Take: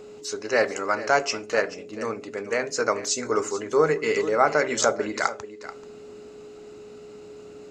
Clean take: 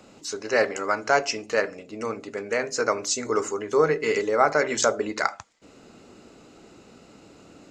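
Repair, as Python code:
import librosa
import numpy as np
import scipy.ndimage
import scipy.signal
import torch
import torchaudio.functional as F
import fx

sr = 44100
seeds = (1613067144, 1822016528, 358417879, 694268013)

y = fx.notch(x, sr, hz=420.0, q=30.0)
y = fx.fix_echo_inverse(y, sr, delay_ms=435, level_db=-15.0)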